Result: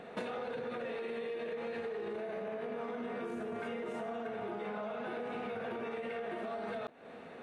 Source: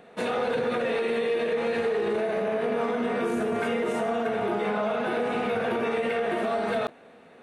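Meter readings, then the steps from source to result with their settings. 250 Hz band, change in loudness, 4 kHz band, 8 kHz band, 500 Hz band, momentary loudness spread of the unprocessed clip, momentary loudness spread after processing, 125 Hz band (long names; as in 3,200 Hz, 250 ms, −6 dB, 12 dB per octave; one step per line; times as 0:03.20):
−12.5 dB, −13.0 dB, −14.0 dB, below −15 dB, −12.5 dB, 1 LU, 1 LU, −12.5 dB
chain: high-shelf EQ 7,300 Hz −10 dB
downward compressor 16 to 1, threshold −39 dBFS, peak gain reduction 16.5 dB
level +2.5 dB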